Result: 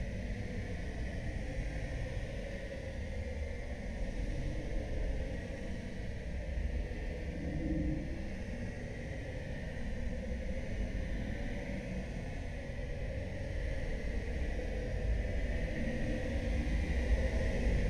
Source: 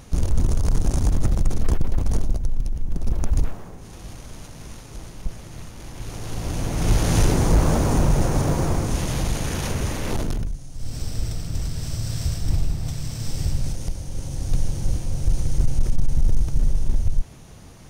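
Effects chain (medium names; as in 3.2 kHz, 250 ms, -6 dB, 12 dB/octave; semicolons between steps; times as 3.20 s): Paulstretch 11×, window 0.10 s, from 4.56 s; vowel filter u; frequency shift -350 Hz; trim +16.5 dB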